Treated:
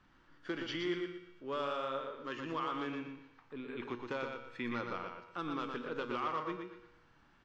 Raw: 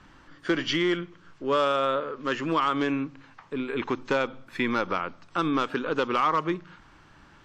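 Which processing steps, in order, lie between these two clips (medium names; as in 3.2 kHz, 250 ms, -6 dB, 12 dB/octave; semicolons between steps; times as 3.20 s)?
low-pass 6.1 kHz 12 dB/octave; feedback comb 120 Hz, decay 1 s, harmonics all, mix 70%; on a send: feedback delay 119 ms, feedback 30%, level -5 dB; on the sum: trim -4.5 dB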